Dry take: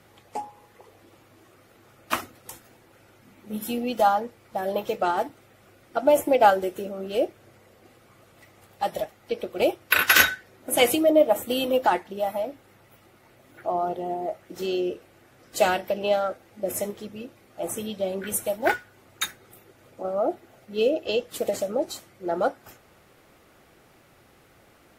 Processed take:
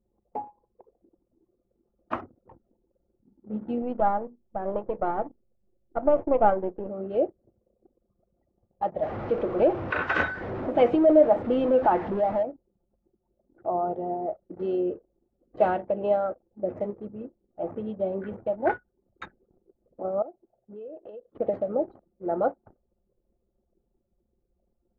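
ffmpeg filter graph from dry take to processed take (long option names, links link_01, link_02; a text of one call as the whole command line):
ffmpeg -i in.wav -filter_complex "[0:a]asettb=1/sr,asplit=3[link_01][link_02][link_03];[link_01]atrim=end=3.824[link_04];[link_02]atrim=start=3.82:end=6.89,asetpts=PTS-STARTPTS,afade=type=in:duration=0.004:curve=qsin,afade=type=out:start_time=3.066:duration=0.004:curve=qsin,aeval=exprs='if(lt(val(0),0),0.447*val(0),val(0))':channel_layout=same,aemphasis=mode=reproduction:type=50fm,bandreject=frequency=60:width_type=h:width=6,bandreject=frequency=120:width_type=h:width=6,bandreject=frequency=180:width_type=h:width=6,bandreject=frequency=240:width_type=h:width=6[link_05];[link_03]atrim=start=6.886[link_06];[link_04][link_05]acrossfade=duration=0.004:curve1=hsin:curve2=qsin[link_07];[link_07][link_06]acrossfade=duration=0.004:curve1=qsin:curve2=hsin,asettb=1/sr,asplit=3[link_08][link_09][link_10];[link_08]atrim=end=9.024[link_11];[link_09]atrim=start=9.02:end=12.43,asetpts=PTS-STARTPTS,afade=type=in:duration=0.004:curve=qsin,afade=type=out:start_time=3.406:duration=0.004:curve=qsin,aeval=exprs='val(0)+0.5*0.0562*sgn(val(0))':channel_layout=same,acrossover=split=7100[link_12][link_13];[link_13]acompressor=threshold=-39dB:ratio=4:attack=1:release=60[link_14];[link_12][link_14]amix=inputs=2:normalize=0[link_15];[link_10]atrim=start=12.426[link_16];[link_11][link_15]acrossfade=duration=0.004:curve1=hsin:curve2=qsin[link_17];[link_17][link_16]acrossfade=duration=0.004:curve1=qsin:curve2=hsin,asettb=1/sr,asplit=3[link_18][link_19][link_20];[link_18]atrim=end=20.224[link_21];[link_19]atrim=start=20.22:end=21.35,asetpts=PTS-STARTPTS,afade=type=in:duration=0.004:curve=qsin,afade=type=out:start_time=1.126:duration=0.004:curve=qsin,lowshelf=frequency=180:gain=-11,acompressor=threshold=-39dB:ratio=5:attack=3.2:release=140:knee=1:detection=peak[link_22];[link_20]atrim=start=21.346[link_23];[link_21][link_22]acrossfade=duration=0.004:curve1=hsin:curve2=qsin[link_24];[link_24][link_23]acrossfade=duration=0.004:curve1=qsin:curve2=hsin,lowpass=1000,anlmdn=0.0398" out.wav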